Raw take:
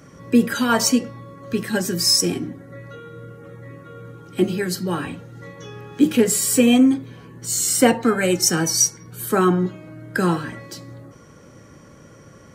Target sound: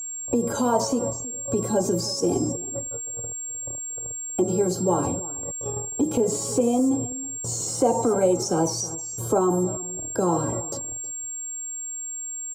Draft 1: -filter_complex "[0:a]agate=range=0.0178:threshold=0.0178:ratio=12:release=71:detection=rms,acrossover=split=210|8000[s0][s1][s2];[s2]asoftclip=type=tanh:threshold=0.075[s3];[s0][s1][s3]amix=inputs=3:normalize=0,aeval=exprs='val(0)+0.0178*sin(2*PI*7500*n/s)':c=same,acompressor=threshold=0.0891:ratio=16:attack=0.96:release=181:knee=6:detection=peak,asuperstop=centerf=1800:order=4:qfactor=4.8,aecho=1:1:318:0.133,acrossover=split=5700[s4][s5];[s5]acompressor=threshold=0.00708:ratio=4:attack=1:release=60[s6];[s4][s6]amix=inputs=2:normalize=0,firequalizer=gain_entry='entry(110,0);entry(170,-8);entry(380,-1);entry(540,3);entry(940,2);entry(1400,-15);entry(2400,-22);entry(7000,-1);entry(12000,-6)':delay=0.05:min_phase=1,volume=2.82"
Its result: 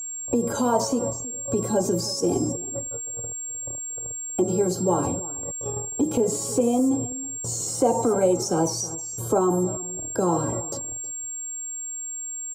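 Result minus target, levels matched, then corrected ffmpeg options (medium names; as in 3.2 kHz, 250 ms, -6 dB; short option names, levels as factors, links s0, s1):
saturation: distortion -9 dB
-filter_complex "[0:a]agate=range=0.0178:threshold=0.0178:ratio=12:release=71:detection=rms,acrossover=split=210|8000[s0][s1][s2];[s2]asoftclip=type=tanh:threshold=0.0224[s3];[s0][s1][s3]amix=inputs=3:normalize=0,aeval=exprs='val(0)+0.0178*sin(2*PI*7500*n/s)':c=same,acompressor=threshold=0.0891:ratio=16:attack=0.96:release=181:knee=6:detection=peak,asuperstop=centerf=1800:order=4:qfactor=4.8,aecho=1:1:318:0.133,acrossover=split=5700[s4][s5];[s5]acompressor=threshold=0.00708:ratio=4:attack=1:release=60[s6];[s4][s6]amix=inputs=2:normalize=0,firequalizer=gain_entry='entry(110,0);entry(170,-8);entry(380,-1);entry(540,3);entry(940,2);entry(1400,-15);entry(2400,-22);entry(7000,-1);entry(12000,-6)':delay=0.05:min_phase=1,volume=2.82"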